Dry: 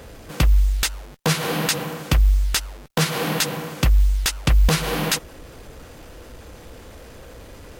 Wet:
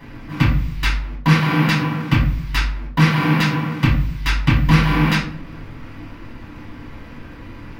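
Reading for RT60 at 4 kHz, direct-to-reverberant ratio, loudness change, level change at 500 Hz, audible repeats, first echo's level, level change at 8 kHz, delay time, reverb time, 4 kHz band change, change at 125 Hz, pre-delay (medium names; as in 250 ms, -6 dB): 0.35 s, -8.0 dB, +3.5 dB, -2.5 dB, no echo, no echo, -12.0 dB, no echo, 0.50 s, -1.0 dB, +6.0 dB, 4 ms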